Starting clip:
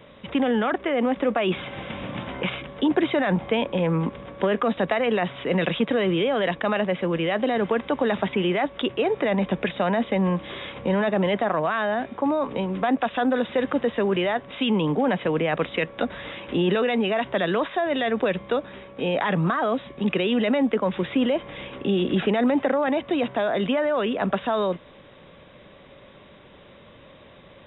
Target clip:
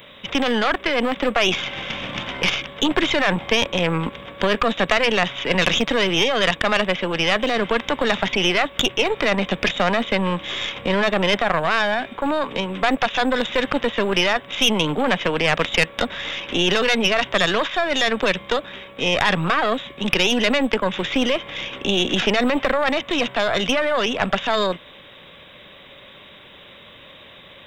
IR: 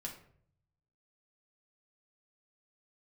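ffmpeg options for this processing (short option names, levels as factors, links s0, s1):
-af "crystalizer=i=9:c=0,aeval=exprs='0.944*(cos(1*acos(clip(val(0)/0.944,-1,1)))-cos(1*PI/2))+0.133*(cos(6*acos(clip(val(0)/0.944,-1,1)))-cos(6*PI/2))':c=same,volume=0.891"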